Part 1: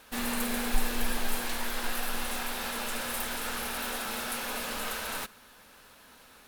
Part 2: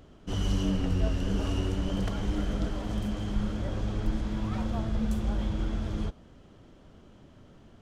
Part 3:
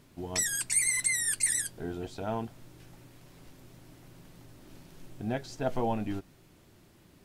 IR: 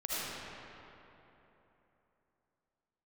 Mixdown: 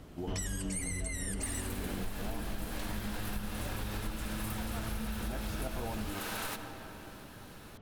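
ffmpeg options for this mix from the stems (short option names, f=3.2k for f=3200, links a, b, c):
-filter_complex "[0:a]adelay=1300,volume=-1dB,asplit=2[a][b];[b]volume=-16.5dB[c];[1:a]lowpass=3.3k,volume=1.5dB[d];[2:a]volume=-0.5dB,asplit=2[e][f];[f]volume=-15.5dB[g];[3:a]atrim=start_sample=2205[h];[c][g]amix=inputs=2:normalize=0[i];[i][h]afir=irnorm=-1:irlink=0[j];[a][d][e][j]amix=inputs=4:normalize=0,acompressor=threshold=-33dB:ratio=10"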